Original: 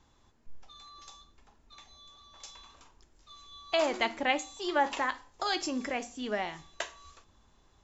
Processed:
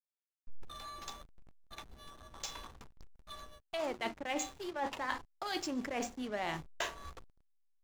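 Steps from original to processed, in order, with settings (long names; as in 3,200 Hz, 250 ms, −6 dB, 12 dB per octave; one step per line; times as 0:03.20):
reversed playback
downward compressor 16 to 1, threshold −41 dBFS, peak gain reduction 20 dB
reversed playback
slack as between gear wheels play −46.5 dBFS
level +8 dB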